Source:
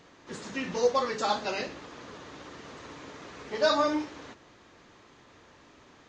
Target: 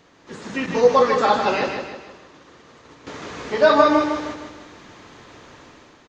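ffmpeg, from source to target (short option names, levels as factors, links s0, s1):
-filter_complex "[0:a]acrossover=split=3100[s0][s1];[s1]acompressor=threshold=0.00316:ratio=4:attack=1:release=60[s2];[s0][s2]amix=inputs=2:normalize=0,asettb=1/sr,asplit=3[s3][s4][s5];[s3]atrim=end=0.664[s6];[s4]atrim=start=0.66:end=3.07,asetpts=PTS-STARTPTS,afade=t=in:d=0.004:c=qsin,afade=t=out:st=2.406:d=0.004:c=qsin,agate=range=0.0224:threshold=0.0178:ratio=3:detection=peak[s7];[s5]atrim=start=3.066[s8];[s6][s7]acrossfade=d=0.004:c1=hsin:c2=qsin[s9];[s9][s8]acrossfade=d=0.004:c1=qsin:c2=hsin,dynaudnorm=f=110:g=9:m=2.82,aecho=1:1:155|310|465|620|775:0.501|0.216|0.0927|0.0398|0.0171,volume=1.19"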